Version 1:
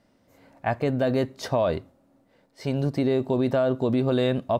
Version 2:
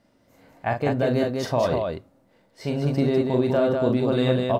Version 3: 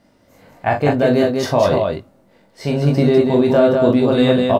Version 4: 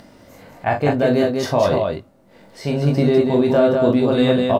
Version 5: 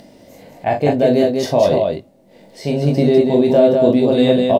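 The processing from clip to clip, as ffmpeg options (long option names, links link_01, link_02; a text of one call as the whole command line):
ffmpeg -i in.wav -af "aecho=1:1:40.82|198.3:0.562|0.631" out.wav
ffmpeg -i in.wav -filter_complex "[0:a]asplit=2[link_01][link_02];[link_02]adelay=20,volume=-6dB[link_03];[link_01][link_03]amix=inputs=2:normalize=0,volume=6.5dB" out.wav
ffmpeg -i in.wav -af "acompressor=mode=upward:threshold=-33dB:ratio=2.5,volume=-2dB" out.wav
ffmpeg -i in.wav -af "firequalizer=gain_entry='entry(100,0);entry(160,5);entry(650,7);entry(1300,-8);entry(1900,2);entry(3400,5)':delay=0.05:min_phase=1,volume=-3dB" out.wav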